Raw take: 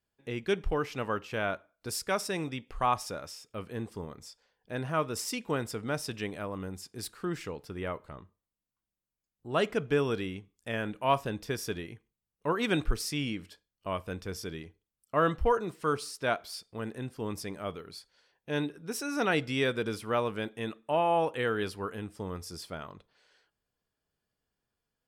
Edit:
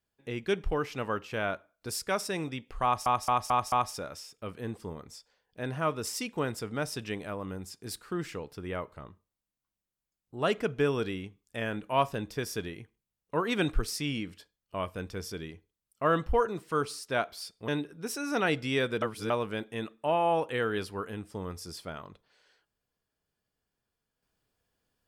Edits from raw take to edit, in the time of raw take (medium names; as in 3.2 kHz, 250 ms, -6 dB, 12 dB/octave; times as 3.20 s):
2.84 s: stutter 0.22 s, 5 plays
16.80–18.53 s: delete
19.87–20.15 s: reverse